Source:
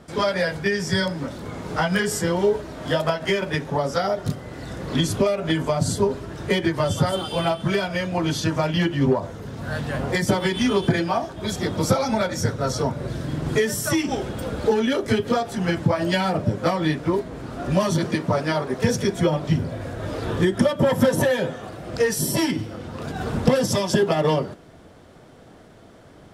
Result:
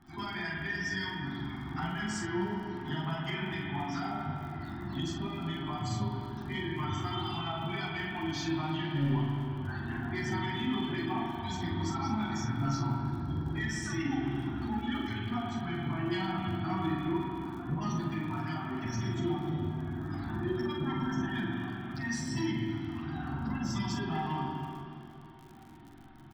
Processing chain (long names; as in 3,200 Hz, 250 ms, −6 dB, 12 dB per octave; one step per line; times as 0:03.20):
low-pass filter 7,000 Hz 24 dB per octave
gate on every frequency bin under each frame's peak −25 dB strong
Chebyshev band-stop filter 350–740 Hz, order 3
brickwall limiter −18 dBFS, peak gain reduction 11 dB
multi-voice chorus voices 4, 0.29 Hz, delay 11 ms, depth 3.5 ms
soft clipping −20 dBFS, distortion −22 dB
surface crackle 41 per second −38 dBFS
double-tracking delay 43 ms −6 dB
delay with a band-pass on its return 475 ms, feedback 77%, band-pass 440 Hz, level −21 dB
convolution reverb RT60 2.8 s, pre-delay 42 ms, DRR −1.5 dB
level −7 dB